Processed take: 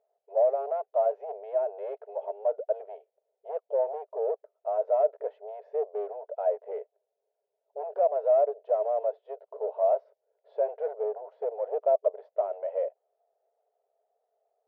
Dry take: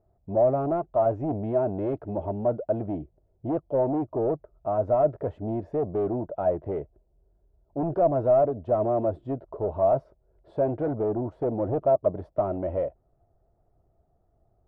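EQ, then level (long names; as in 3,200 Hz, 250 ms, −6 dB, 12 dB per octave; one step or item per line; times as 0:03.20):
linear-phase brick-wall high-pass 410 Hz
high-frequency loss of the air 190 metres
parametric band 1,200 Hz −9 dB 0.8 octaves
0.0 dB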